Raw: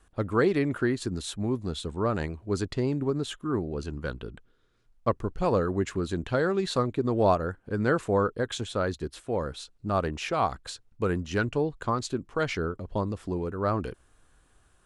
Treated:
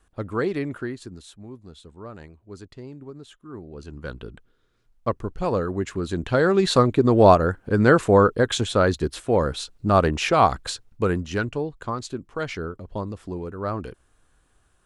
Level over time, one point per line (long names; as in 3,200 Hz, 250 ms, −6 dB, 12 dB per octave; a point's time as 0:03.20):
0:00.64 −1.5 dB
0:01.41 −12 dB
0:03.43 −12 dB
0:04.18 +1 dB
0:05.91 +1 dB
0:06.66 +9 dB
0:10.66 +9 dB
0:11.66 −1 dB